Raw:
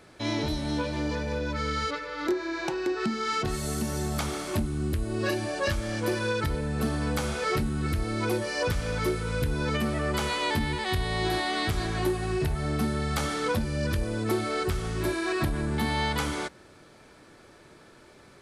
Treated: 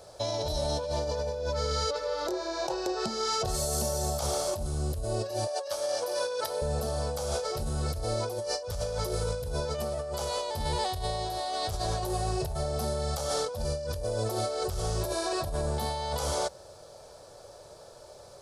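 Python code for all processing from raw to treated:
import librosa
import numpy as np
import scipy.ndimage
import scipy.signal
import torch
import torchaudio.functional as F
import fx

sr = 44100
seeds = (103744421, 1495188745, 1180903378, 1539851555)

y = fx.chain(x, sr, fx.highpass(hz=510.0, slope=12),
    fx.notch(hz=7300.0, q=10.0), at=(5.47, 6.62))
y = fx.curve_eq(y, sr, hz=(100.0, 290.0, 560.0, 2100.0, 5100.0, 8400.0), db=(0, -15, 10, -14, 6, 4))
y = fx.over_compress(y, sr, threshold_db=-31.0, ratio=-1.0)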